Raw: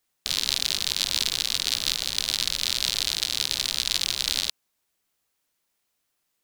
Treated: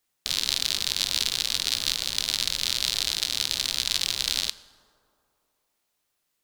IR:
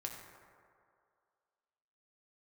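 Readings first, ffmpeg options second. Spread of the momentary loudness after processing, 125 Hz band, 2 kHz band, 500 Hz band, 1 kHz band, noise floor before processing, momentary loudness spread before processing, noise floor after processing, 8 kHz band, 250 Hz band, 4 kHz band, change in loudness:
2 LU, 0.0 dB, −0.5 dB, −0.5 dB, −0.5 dB, −77 dBFS, 2 LU, −77 dBFS, −0.5 dB, −0.5 dB, −0.5 dB, −0.5 dB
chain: -filter_complex "[0:a]asplit=2[link_01][link_02];[1:a]atrim=start_sample=2205,asetrate=33957,aresample=44100[link_03];[link_02][link_03]afir=irnorm=-1:irlink=0,volume=-9.5dB[link_04];[link_01][link_04]amix=inputs=2:normalize=0,volume=-2.5dB"

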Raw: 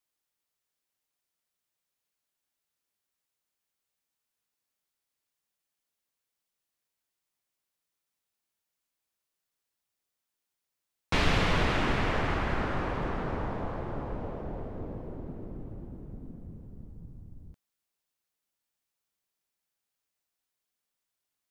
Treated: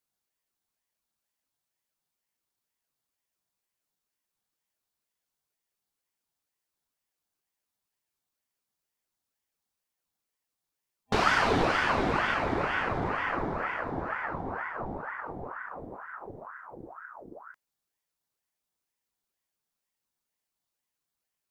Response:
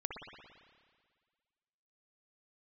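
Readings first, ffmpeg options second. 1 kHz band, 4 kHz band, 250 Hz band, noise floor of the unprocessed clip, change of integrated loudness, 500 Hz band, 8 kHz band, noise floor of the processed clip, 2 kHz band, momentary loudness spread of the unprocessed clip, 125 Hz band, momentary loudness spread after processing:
+5.5 dB, −0.5 dB, −0.5 dB, below −85 dBFS, +2.0 dB, +2.5 dB, +1.0 dB, below −85 dBFS, +5.0 dB, 21 LU, −5.0 dB, 20 LU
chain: -af "superequalizer=7b=2.51:8b=1.58:12b=0.355,aeval=exprs='val(0)*sin(2*PI*890*n/s+890*0.7/2.1*sin(2*PI*2.1*n/s))':channel_layout=same,volume=2dB"

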